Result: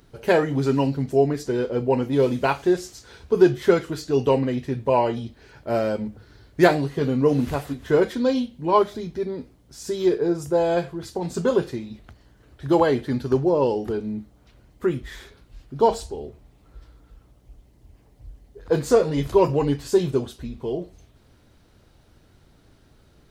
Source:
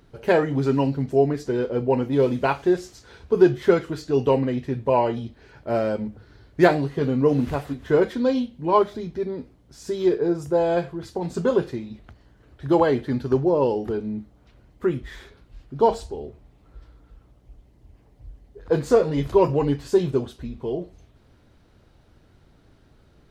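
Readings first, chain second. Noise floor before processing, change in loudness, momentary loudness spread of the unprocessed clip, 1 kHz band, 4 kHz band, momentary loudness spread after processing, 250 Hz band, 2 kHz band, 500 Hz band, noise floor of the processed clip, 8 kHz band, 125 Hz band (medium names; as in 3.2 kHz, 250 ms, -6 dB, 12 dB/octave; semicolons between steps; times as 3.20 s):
-57 dBFS, 0.0 dB, 14 LU, +0.5 dB, +3.0 dB, 15 LU, 0.0 dB, +1.0 dB, 0.0 dB, -57 dBFS, no reading, 0.0 dB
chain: treble shelf 4.8 kHz +8.5 dB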